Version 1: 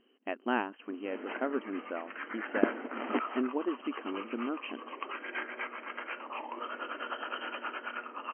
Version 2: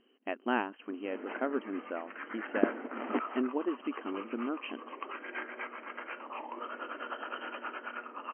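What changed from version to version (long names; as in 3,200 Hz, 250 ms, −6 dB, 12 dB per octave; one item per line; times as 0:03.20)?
background: add high-frequency loss of the air 290 metres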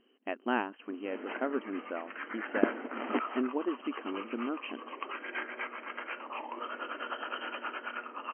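background: remove high-frequency loss of the air 290 metres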